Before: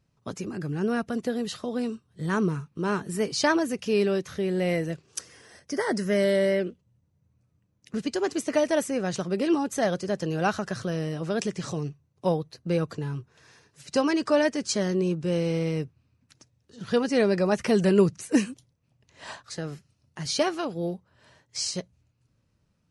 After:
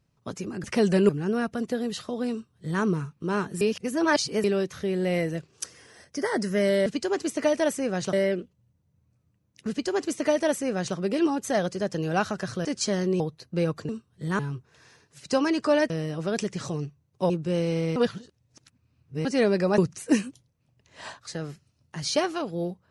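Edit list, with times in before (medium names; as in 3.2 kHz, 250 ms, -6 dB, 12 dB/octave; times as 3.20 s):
1.87–2.37 s: copy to 13.02 s
3.16–3.99 s: reverse
7.97–9.24 s: copy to 6.41 s
10.93–12.33 s: swap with 14.53–15.08 s
15.74–17.03 s: reverse
17.56–18.01 s: move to 0.64 s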